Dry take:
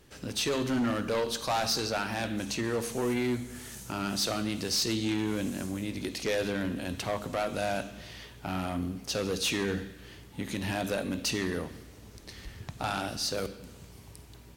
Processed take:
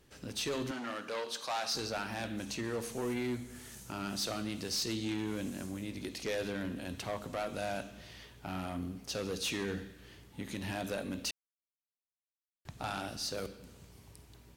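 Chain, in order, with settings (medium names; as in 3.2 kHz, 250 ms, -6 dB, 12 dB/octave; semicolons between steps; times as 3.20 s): 0.71–1.75 s: frequency weighting A; 11.31–12.65 s: mute; trim -6 dB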